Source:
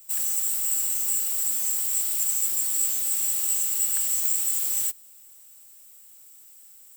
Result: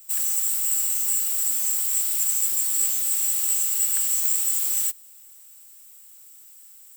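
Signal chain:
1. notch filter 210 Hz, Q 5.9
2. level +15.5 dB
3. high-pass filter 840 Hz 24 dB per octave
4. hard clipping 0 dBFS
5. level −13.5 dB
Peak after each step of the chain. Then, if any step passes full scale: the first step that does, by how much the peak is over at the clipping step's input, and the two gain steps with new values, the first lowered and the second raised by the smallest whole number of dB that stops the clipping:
−9.5, +6.0, +6.5, 0.0, −13.5 dBFS
step 2, 6.5 dB
step 2 +8.5 dB, step 5 −6.5 dB

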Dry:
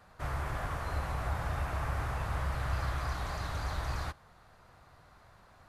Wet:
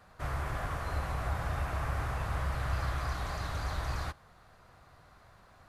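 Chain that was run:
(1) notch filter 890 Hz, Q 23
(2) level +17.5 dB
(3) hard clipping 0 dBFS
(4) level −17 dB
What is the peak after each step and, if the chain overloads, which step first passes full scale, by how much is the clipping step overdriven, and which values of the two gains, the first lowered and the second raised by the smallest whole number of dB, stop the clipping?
−21.5, −4.0, −4.0, −21.0 dBFS
no step passes full scale

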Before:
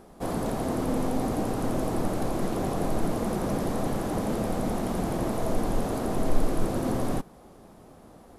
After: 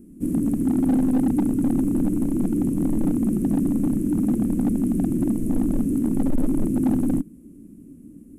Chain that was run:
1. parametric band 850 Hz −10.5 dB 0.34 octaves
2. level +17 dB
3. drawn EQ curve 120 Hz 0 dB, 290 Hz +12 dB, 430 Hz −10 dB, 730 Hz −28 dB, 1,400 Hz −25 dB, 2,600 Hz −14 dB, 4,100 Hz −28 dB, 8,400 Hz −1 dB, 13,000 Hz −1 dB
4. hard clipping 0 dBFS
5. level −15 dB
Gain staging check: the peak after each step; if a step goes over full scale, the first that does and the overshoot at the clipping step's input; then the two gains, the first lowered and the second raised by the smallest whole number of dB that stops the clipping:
−9.5, +7.5, +9.0, 0.0, −15.0 dBFS
step 2, 9.0 dB
step 2 +8 dB, step 5 −6 dB

